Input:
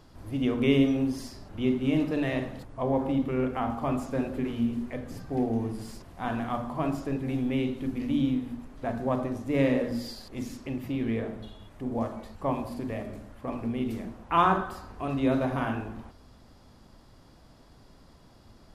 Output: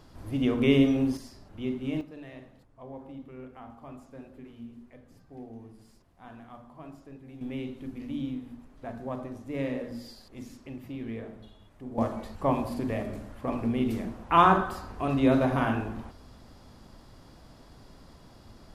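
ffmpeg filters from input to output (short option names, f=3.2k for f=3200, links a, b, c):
-af "asetnsamples=n=441:p=0,asendcmd='1.17 volume volume -6dB;2.01 volume volume -16.5dB;7.41 volume volume -7.5dB;11.98 volume volume 3dB',volume=1dB"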